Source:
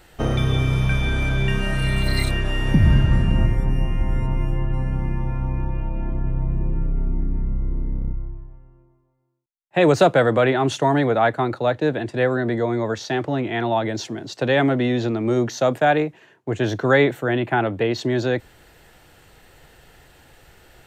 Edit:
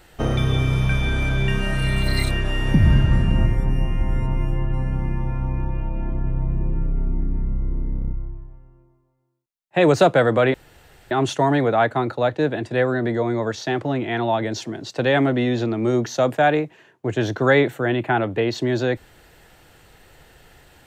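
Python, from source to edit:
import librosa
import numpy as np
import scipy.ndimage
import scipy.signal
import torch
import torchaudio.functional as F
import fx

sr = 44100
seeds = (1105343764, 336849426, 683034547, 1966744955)

y = fx.edit(x, sr, fx.insert_room_tone(at_s=10.54, length_s=0.57), tone=tone)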